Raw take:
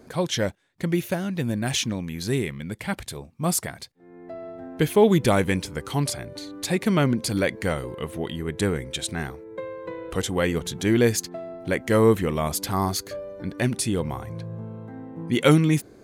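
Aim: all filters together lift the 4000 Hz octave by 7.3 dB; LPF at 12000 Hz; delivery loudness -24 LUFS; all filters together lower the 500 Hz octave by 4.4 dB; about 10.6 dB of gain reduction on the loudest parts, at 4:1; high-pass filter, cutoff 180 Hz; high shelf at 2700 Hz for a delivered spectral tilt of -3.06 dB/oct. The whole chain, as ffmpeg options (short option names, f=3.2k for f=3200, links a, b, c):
-af "highpass=180,lowpass=12k,equalizer=f=500:t=o:g=-5.5,highshelf=f=2.7k:g=7,equalizer=f=4k:t=o:g=3.5,acompressor=threshold=-27dB:ratio=4,volume=7.5dB"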